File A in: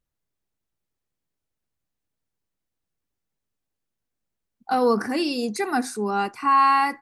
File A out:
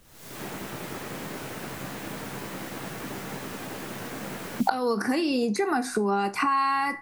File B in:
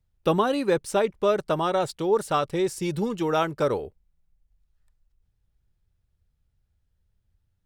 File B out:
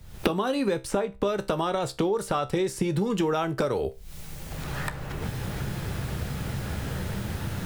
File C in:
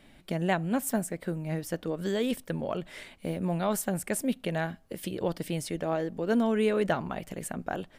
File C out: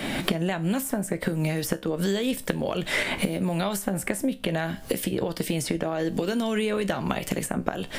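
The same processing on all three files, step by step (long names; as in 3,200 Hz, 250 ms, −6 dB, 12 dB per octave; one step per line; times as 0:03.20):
camcorder AGC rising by 73 dB per second
tuned comb filter 66 Hz, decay 0.23 s, harmonics all, mix 60%
multiband upward and downward compressor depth 100%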